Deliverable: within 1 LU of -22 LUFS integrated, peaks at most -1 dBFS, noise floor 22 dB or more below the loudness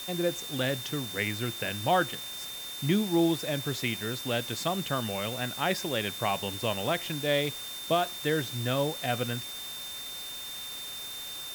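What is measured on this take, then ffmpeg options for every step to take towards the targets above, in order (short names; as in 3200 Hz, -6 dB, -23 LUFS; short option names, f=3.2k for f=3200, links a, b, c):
steady tone 3600 Hz; tone level -39 dBFS; noise floor -40 dBFS; noise floor target -53 dBFS; loudness -30.5 LUFS; peak -13.5 dBFS; loudness target -22.0 LUFS
-> -af "bandreject=f=3.6k:w=30"
-af "afftdn=nr=13:nf=-40"
-af "volume=8.5dB"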